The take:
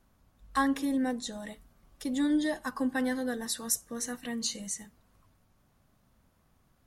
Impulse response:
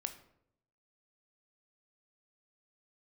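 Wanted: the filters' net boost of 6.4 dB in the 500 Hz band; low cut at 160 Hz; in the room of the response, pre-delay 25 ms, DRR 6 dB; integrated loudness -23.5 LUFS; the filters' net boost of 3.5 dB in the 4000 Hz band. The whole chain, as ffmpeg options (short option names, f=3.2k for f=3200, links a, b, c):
-filter_complex "[0:a]highpass=160,equalizer=f=500:t=o:g=7,equalizer=f=4k:t=o:g=4,asplit=2[a][b];[1:a]atrim=start_sample=2205,adelay=25[c];[b][c]afir=irnorm=-1:irlink=0,volume=-5dB[d];[a][d]amix=inputs=2:normalize=0,volume=5.5dB"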